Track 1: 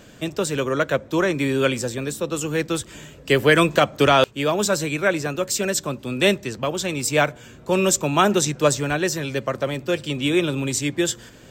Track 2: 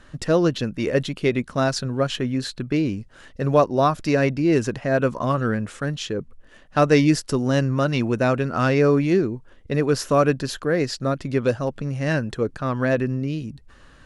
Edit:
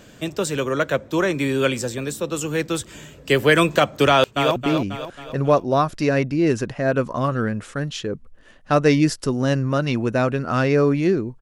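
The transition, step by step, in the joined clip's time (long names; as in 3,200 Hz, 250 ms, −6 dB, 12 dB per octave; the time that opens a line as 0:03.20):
track 1
0:04.09–0:04.56: delay throw 270 ms, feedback 50%, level −6.5 dB
0:04.56: continue with track 2 from 0:02.62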